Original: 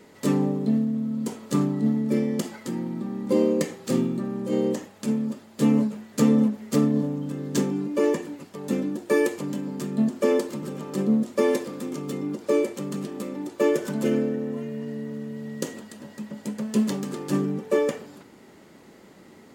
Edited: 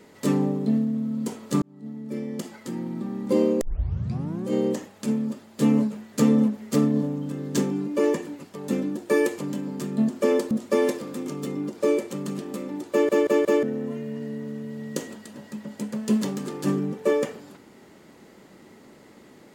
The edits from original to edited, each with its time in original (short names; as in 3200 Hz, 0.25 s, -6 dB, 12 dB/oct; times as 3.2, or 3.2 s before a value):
1.62–3.03 fade in
3.61 tape start 0.86 s
10.51–11.17 cut
13.57 stutter in place 0.18 s, 4 plays